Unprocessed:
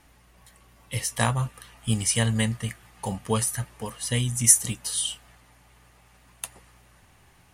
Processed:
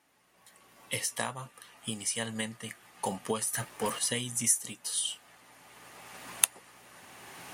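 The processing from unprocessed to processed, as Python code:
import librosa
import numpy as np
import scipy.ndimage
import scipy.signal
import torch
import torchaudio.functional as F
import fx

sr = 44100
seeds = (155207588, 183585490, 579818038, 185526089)

y = fx.recorder_agc(x, sr, target_db=-9.0, rise_db_per_s=15.0, max_gain_db=30)
y = scipy.signal.sosfilt(scipy.signal.butter(2, 250.0, 'highpass', fs=sr, output='sos'), y)
y = fx.leveller(y, sr, passes=2, at=(3.53, 3.99))
y = y * librosa.db_to_amplitude(-10.0)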